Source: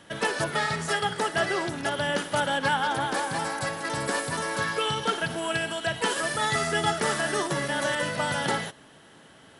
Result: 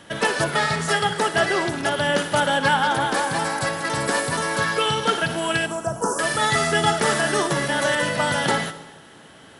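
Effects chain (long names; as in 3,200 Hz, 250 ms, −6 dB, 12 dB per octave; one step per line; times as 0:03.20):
0:05.66–0:06.19: elliptic band-stop filter 1,300–5,800 Hz, stop band 40 dB
on a send: convolution reverb RT60 1.1 s, pre-delay 38 ms, DRR 12.5 dB
on the sum: level +5.5 dB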